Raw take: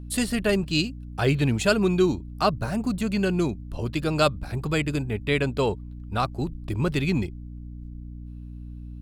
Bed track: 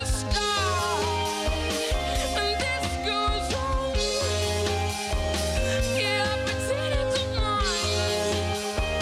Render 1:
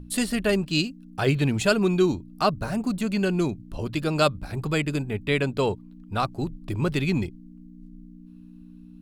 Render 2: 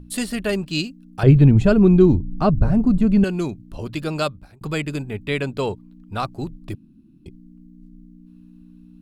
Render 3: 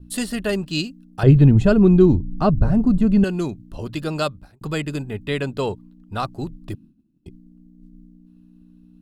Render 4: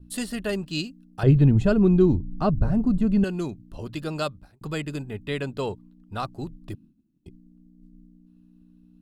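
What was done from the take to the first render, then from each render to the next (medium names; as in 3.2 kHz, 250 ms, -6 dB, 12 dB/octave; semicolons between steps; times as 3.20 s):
hum notches 60/120 Hz
1.23–3.24 s: tilt EQ -4.5 dB/octave; 4.12–4.61 s: fade out; 6.75–7.26 s: room tone
expander -41 dBFS; band-stop 2.3 kHz, Q 8.8
trim -5 dB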